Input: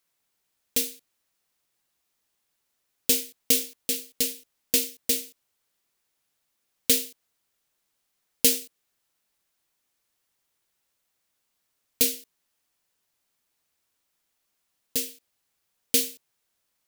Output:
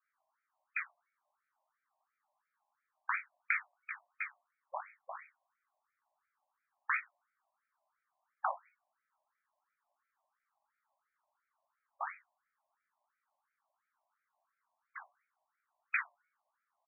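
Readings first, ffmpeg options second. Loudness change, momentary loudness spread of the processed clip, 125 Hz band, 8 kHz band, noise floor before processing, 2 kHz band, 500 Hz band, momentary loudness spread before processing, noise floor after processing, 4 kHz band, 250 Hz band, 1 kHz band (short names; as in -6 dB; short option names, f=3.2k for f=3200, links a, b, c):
-15.0 dB, 16 LU, under -40 dB, under -40 dB, -77 dBFS, +2.5 dB, -18.5 dB, 11 LU, under -85 dBFS, under -40 dB, under -40 dB, n/a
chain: -filter_complex "[0:a]bandreject=f=377.8:t=h:w=4,bandreject=f=755.6:t=h:w=4,bandreject=f=1.1334k:t=h:w=4,bandreject=f=1.5112k:t=h:w=4,bandreject=f=1.889k:t=h:w=4,bandreject=f=2.2668k:t=h:w=4,bandreject=f=2.6446k:t=h:w=4,bandreject=f=3.0224k:t=h:w=4,bandreject=f=3.4002k:t=h:w=4,bandreject=f=3.778k:t=h:w=4,bandreject=f=4.1558k:t=h:w=4,bandreject=f=4.5336k:t=h:w=4,bandreject=f=4.9114k:t=h:w=4,bandreject=f=5.2892k:t=h:w=4,bandreject=f=5.667k:t=h:w=4,bandreject=f=6.0448k:t=h:w=4,bandreject=f=6.4226k:t=h:w=4,bandreject=f=6.8004k:t=h:w=4,bandreject=f=7.1782k:t=h:w=4,bandreject=f=7.556k:t=h:w=4,bandreject=f=7.9338k:t=h:w=4,bandreject=f=8.3116k:t=h:w=4,bandreject=f=8.6894k:t=h:w=4,bandreject=f=9.0672k:t=h:w=4,bandreject=f=9.445k:t=h:w=4,bandreject=f=9.8228k:t=h:w=4,bandreject=f=10.2006k:t=h:w=4,bandreject=f=10.5784k:t=h:w=4,bandreject=f=10.9562k:t=h:w=4,bandreject=f=11.334k:t=h:w=4,bandreject=f=11.7118k:t=h:w=4,bandreject=f=12.0896k:t=h:w=4,bandreject=f=12.4674k:t=h:w=4,bandreject=f=12.8452k:t=h:w=4,bandreject=f=13.223k:t=h:w=4,bandreject=f=13.6008k:t=h:w=4,bandreject=f=13.9786k:t=h:w=4,bandreject=f=14.3564k:t=h:w=4,bandreject=f=14.7342k:t=h:w=4,acrossover=split=320|1300[a][b][c];[b]acompressor=threshold=-45dB:ratio=6[d];[a][d][c]amix=inputs=3:normalize=0,asplit=2[e][f];[f]adelay=41,volume=-6dB[g];[e][g]amix=inputs=2:normalize=0,flanger=delay=17:depth=2.5:speed=2.3,afreqshift=-43,adynamicsmooth=sensitivity=2.5:basefreq=1.2k,afftfilt=real='re*between(b*sr/1024,780*pow(1800/780,0.5+0.5*sin(2*PI*2.9*pts/sr))/1.41,780*pow(1800/780,0.5+0.5*sin(2*PI*2.9*pts/sr))*1.41)':imag='im*between(b*sr/1024,780*pow(1800/780,0.5+0.5*sin(2*PI*2.9*pts/sr))/1.41,780*pow(1800/780,0.5+0.5*sin(2*PI*2.9*pts/sr))*1.41)':win_size=1024:overlap=0.75,volume=14dB"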